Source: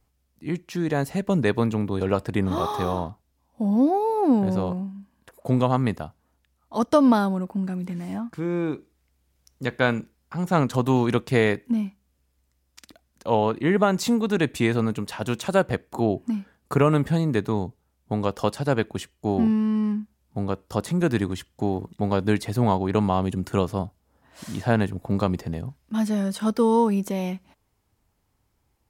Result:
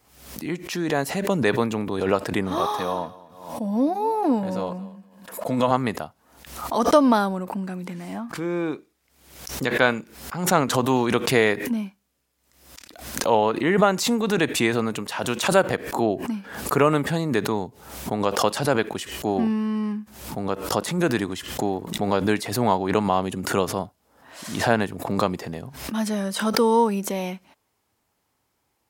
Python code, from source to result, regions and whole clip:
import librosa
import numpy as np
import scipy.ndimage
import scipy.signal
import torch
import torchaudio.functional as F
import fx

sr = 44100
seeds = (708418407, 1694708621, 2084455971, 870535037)

y = fx.chain(x, sr, fx.highpass(hz=140.0, slope=6),
    fx.notch_comb(f0_hz=390.0),
    fx.echo_feedback(ms=228, feedback_pct=16, wet_db=-19.5), at=(2.77, 5.71))
y = fx.highpass(y, sr, hz=380.0, slope=6)
y = fx.pre_swell(y, sr, db_per_s=77.0)
y = y * librosa.db_to_amplitude(3.5)